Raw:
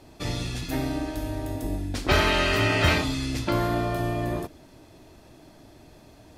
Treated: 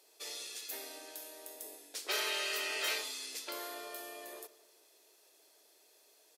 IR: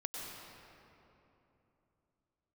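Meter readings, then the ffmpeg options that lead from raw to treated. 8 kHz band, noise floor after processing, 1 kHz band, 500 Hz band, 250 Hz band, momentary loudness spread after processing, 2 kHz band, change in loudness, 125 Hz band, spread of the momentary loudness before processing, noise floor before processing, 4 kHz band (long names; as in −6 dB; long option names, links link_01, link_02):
−2.0 dB, −66 dBFS, −17.0 dB, −17.0 dB, −28.0 dB, 14 LU, −12.5 dB, −12.5 dB, below −40 dB, 11 LU, −52 dBFS, −8.0 dB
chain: -filter_complex "[0:a]highpass=frequency=430:width_type=q:width=4.9,aderivative,asplit=2[link_01][link_02];[link_02]adelay=162,lowpass=frequency=2000:poles=1,volume=-17.5dB,asplit=2[link_03][link_04];[link_04]adelay=162,lowpass=frequency=2000:poles=1,volume=0.54,asplit=2[link_05][link_06];[link_06]adelay=162,lowpass=frequency=2000:poles=1,volume=0.54,asplit=2[link_07][link_08];[link_08]adelay=162,lowpass=frequency=2000:poles=1,volume=0.54,asplit=2[link_09][link_10];[link_10]adelay=162,lowpass=frequency=2000:poles=1,volume=0.54[link_11];[link_03][link_05][link_07][link_09][link_11]amix=inputs=5:normalize=0[link_12];[link_01][link_12]amix=inputs=2:normalize=0,volume=-2dB"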